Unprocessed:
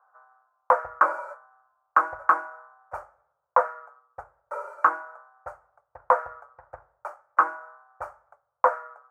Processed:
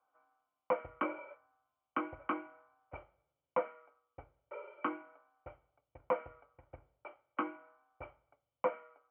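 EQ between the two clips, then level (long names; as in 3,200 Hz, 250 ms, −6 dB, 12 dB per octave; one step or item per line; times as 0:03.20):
formant resonators in series i
high-shelf EQ 2,100 Hz +10 dB
notch filter 1,700 Hz, Q 8.4
+12.0 dB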